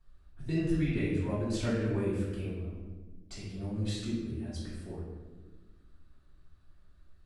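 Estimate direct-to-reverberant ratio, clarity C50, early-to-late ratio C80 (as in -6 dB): -11.0 dB, 0.0 dB, 3.0 dB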